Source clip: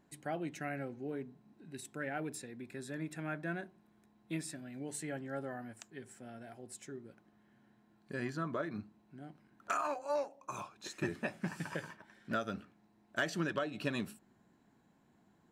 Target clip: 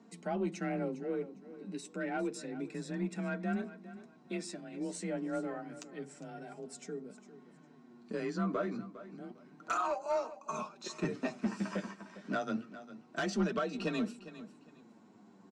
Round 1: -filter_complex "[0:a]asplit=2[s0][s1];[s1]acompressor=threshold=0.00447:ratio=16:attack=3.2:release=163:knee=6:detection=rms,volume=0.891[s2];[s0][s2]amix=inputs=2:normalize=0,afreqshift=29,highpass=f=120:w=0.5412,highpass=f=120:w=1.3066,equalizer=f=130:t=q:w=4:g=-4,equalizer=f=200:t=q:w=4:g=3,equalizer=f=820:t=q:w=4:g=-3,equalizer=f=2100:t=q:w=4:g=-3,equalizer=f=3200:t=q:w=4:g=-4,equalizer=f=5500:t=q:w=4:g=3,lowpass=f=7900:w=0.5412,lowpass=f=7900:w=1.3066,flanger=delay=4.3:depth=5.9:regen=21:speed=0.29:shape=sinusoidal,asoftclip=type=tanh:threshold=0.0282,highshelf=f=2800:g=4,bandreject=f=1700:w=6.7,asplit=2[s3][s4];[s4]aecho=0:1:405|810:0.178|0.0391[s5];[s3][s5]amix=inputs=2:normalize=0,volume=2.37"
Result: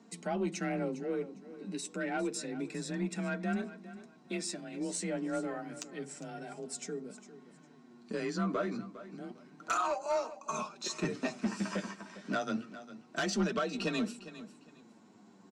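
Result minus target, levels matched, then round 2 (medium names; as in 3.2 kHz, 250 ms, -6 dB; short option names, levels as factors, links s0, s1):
compression: peak gain reduction -11 dB; 4 kHz band +4.5 dB
-filter_complex "[0:a]asplit=2[s0][s1];[s1]acompressor=threshold=0.00119:ratio=16:attack=3.2:release=163:knee=6:detection=rms,volume=0.891[s2];[s0][s2]amix=inputs=2:normalize=0,afreqshift=29,highpass=f=120:w=0.5412,highpass=f=120:w=1.3066,equalizer=f=130:t=q:w=4:g=-4,equalizer=f=200:t=q:w=4:g=3,equalizer=f=820:t=q:w=4:g=-3,equalizer=f=2100:t=q:w=4:g=-3,equalizer=f=3200:t=q:w=4:g=-4,equalizer=f=5500:t=q:w=4:g=3,lowpass=f=7900:w=0.5412,lowpass=f=7900:w=1.3066,flanger=delay=4.3:depth=5.9:regen=21:speed=0.29:shape=sinusoidal,asoftclip=type=tanh:threshold=0.0282,highshelf=f=2800:g=-3,bandreject=f=1700:w=6.7,asplit=2[s3][s4];[s4]aecho=0:1:405|810:0.178|0.0391[s5];[s3][s5]amix=inputs=2:normalize=0,volume=2.37"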